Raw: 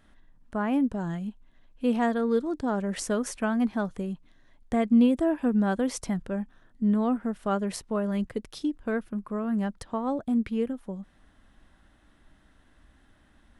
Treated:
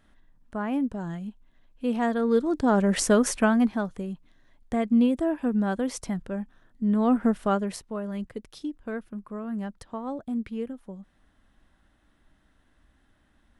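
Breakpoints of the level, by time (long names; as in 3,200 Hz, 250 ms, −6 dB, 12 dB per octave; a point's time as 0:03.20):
0:01.88 −2 dB
0:02.81 +7.5 dB
0:03.38 +7.5 dB
0:03.89 −1 dB
0:06.87 −1 dB
0:07.26 +8 dB
0:07.88 −4.5 dB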